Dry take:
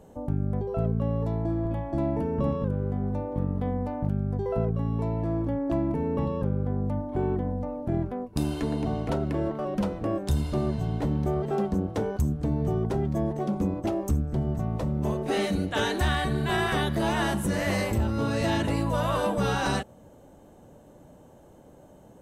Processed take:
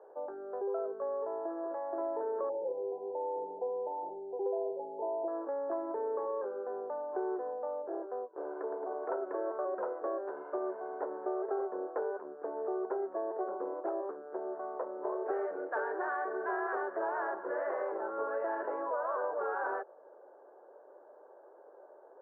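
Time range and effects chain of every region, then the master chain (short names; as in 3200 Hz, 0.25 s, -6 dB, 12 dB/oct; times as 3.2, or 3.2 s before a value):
2.49–5.28 brick-wall FIR band-stop 990–2500 Hz + comb 5.9 ms, depth 73% + flutter echo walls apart 9.1 m, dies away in 0.37 s
7.82–9.03 tape spacing loss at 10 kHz 28 dB + core saturation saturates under 180 Hz
whole clip: Chebyshev band-pass 380–1600 Hz, order 4; compressor, threshold -31 dBFS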